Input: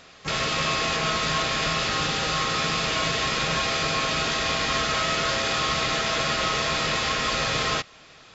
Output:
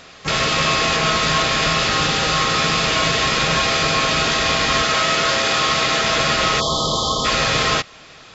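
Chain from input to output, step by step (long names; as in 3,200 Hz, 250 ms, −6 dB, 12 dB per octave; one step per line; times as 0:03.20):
0:04.82–0:06.02: low-shelf EQ 110 Hz −9.5 dB
0:06.60–0:07.25: time-frequency box erased 1,300–3,000 Hz
level +7 dB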